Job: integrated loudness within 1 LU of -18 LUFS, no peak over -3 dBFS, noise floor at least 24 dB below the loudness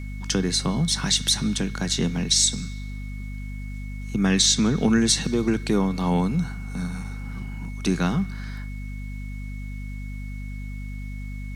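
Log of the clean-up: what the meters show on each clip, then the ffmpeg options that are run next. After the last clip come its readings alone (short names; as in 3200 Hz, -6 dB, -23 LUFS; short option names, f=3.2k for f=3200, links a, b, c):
hum 50 Hz; harmonics up to 250 Hz; hum level -31 dBFS; steady tone 2200 Hz; tone level -45 dBFS; loudness -22.5 LUFS; peak -4.5 dBFS; loudness target -18.0 LUFS
-> -af "bandreject=f=50:t=h:w=6,bandreject=f=100:t=h:w=6,bandreject=f=150:t=h:w=6,bandreject=f=200:t=h:w=6,bandreject=f=250:t=h:w=6"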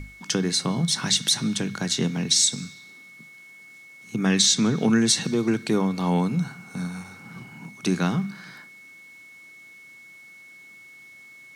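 hum none; steady tone 2200 Hz; tone level -45 dBFS
-> -af "bandreject=f=2.2k:w=30"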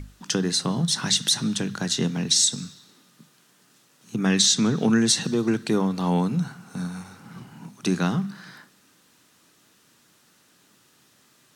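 steady tone none; loudness -23.0 LUFS; peak -5.0 dBFS; loudness target -18.0 LUFS
-> -af "volume=5dB,alimiter=limit=-3dB:level=0:latency=1"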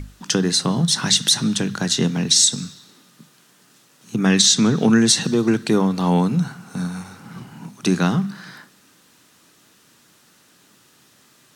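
loudness -18.0 LUFS; peak -3.0 dBFS; noise floor -55 dBFS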